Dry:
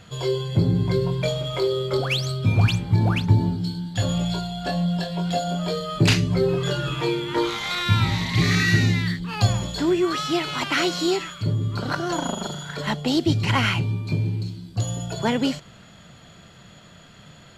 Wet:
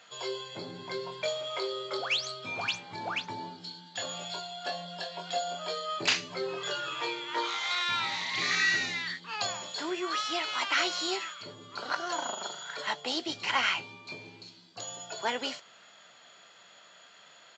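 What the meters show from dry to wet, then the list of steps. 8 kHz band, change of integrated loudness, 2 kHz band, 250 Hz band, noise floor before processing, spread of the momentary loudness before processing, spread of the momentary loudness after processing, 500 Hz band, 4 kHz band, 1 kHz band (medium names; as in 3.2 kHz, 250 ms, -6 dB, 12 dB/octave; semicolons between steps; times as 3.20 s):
-4.5 dB, -9.0 dB, -3.5 dB, -19.0 dB, -48 dBFS, 8 LU, 13 LU, -11.0 dB, -4.0 dB, -4.5 dB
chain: high-pass 650 Hz 12 dB/octave; doubling 16 ms -12.5 dB; resampled via 16 kHz; trim -4 dB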